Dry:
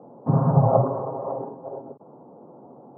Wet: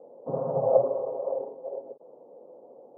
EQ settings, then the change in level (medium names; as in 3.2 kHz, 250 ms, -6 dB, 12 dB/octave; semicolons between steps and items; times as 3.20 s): band-pass filter 520 Hz, Q 4.4; +3.0 dB